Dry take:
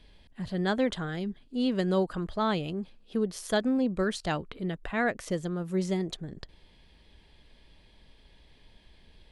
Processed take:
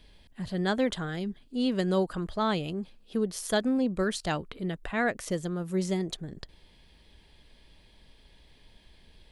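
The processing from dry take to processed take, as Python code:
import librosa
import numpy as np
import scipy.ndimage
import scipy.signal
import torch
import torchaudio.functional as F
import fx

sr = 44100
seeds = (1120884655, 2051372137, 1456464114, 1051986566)

y = fx.high_shelf(x, sr, hz=7100.0, db=7.5)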